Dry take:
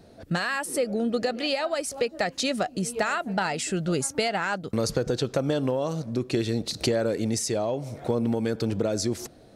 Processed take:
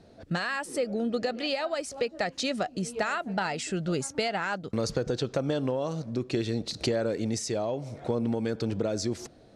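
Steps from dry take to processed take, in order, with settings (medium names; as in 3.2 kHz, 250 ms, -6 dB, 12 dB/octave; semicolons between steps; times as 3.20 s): low-pass 7.5 kHz 12 dB/octave; trim -3 dB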